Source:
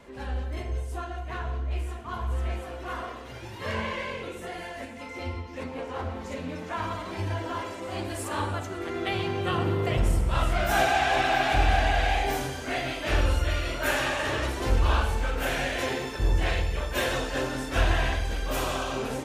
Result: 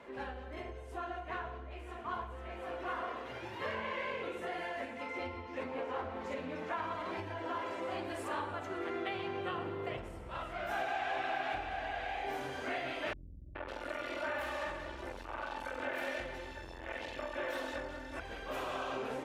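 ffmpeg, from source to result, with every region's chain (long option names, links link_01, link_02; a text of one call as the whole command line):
ffmpeg -i in.wav -filter_complex "[0:a]asettb=1/sr,asplit=3[link_01][link_02][link_03];[link_01]atrim=end=13.134[link_04];[link_02]atrim=start=13.13:end=18.2,asetpts=PTS-STARTPTS,afade=type=in:duration=0.004:curve=qsin,afade=type=out:start_time=5.066:duration=0.004:curve=qsin,aecho=1:1:3.4:0.93,atrim=end_sample=223587,aeval=exprs='(tanh(14.1*val(0)+0.6)-tanh(0.6))/14.1':channel_layout=same,acrossover=split=230|2900[link_05][link_06][link_07];[link_06]adelay=420[link_08];[link_07]adelay=550[link_09];[link_05][link_08][link_09]amix=inputs=3:normalize=0,atrim=end_sample=223587[link_10];[link_03]atrim=start=18.196[link_11];[link_04][link_10]acrossfade=duration=0.004:curve1=hsin:curve2=qsin[link_12];[link_12][link_11]acrossfade=duration=0.004:curve1=qsin:curve2=hsin,acompressor=threshold=-33dB:ratio=6,highpass=frequency=82:poles=1,bass=frequency=250:gain=-9,treble=frequency=4000:gain=-13" out.wav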